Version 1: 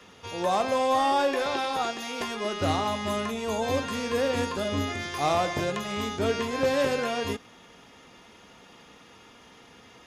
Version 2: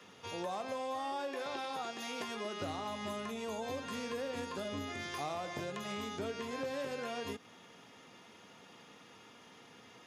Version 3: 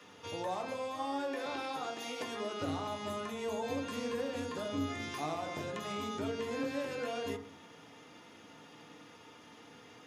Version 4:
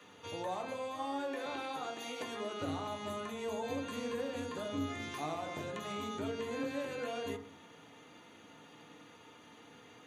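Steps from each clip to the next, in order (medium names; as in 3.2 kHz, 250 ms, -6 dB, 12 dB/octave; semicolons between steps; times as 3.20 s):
high-pass 97 Hz 24 dB/octave; compression 5:1, threshold -32 dBFS, peak gain reduction 11 dB; trim -5 dB
FDN reverb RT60 0.59 s, low-frequency decay 1.45×, high-frequency decay 0.3×, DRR 3.5 dB
Butterworth band-stop 5.2 kHz, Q 6.2; trim -1.5 dB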